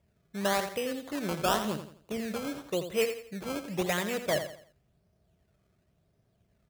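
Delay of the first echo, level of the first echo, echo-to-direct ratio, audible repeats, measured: 85 ms, −9.5 dB, −9.0 dB, 3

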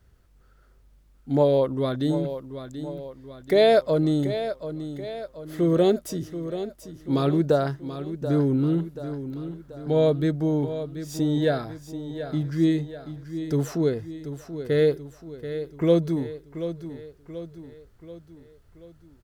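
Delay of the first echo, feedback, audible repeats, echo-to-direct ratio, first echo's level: 733 ms, 50%, 4, −10.0 dB, −11.0 dB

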